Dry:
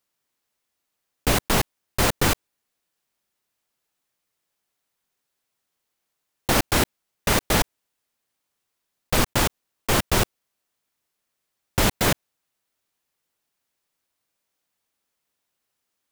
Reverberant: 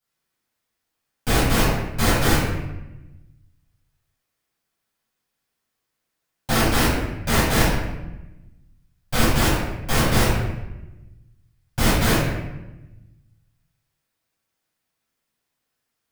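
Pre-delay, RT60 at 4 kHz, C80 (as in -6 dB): 7 ms, 0.70 s, 3.0 dB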